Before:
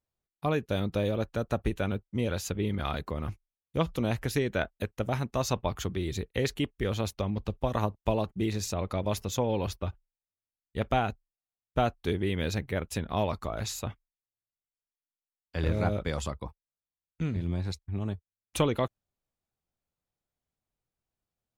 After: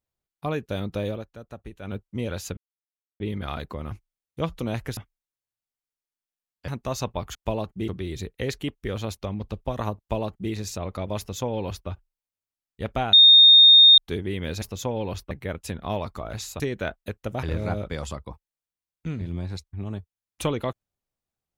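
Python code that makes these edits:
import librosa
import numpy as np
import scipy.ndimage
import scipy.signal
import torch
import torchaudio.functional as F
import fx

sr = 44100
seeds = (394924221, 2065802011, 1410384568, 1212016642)

y = fx.edit(x, sr, fx.fade_down_up(start_s=1.11, length_s=0.84, db=-11.5, fade_s=0.14),
    fx.insert_silence(at_s=2.57, length_s=0.63),
    fx.swap(start_s=4.34, length_s=0.83, other_s=13.87, other_length_s=1.71),
    fx.duplicate(start_s=7.95, length_s=0.53, to_s=5.84),
    fx.duplicate(start_s=9.15, length_s=0.69, to_s=12.58),
    fx.bleep(start_s=11.09, length_s=0.85, hz=3680.0, db=-8.5), tone=tone)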